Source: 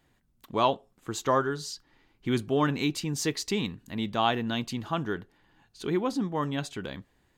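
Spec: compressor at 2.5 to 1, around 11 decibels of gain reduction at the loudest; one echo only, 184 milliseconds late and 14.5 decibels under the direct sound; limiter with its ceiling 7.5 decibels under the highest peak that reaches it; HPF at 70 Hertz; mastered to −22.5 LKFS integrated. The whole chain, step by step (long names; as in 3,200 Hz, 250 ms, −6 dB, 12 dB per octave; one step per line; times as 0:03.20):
high-pass filter 70 Hz
downward compressor 2.5 to 1, threshold −36 dBFS
brickwall limiter −27.5 dBFS
single-tap delay 184 ms −14.5 dB
level +16.5 dB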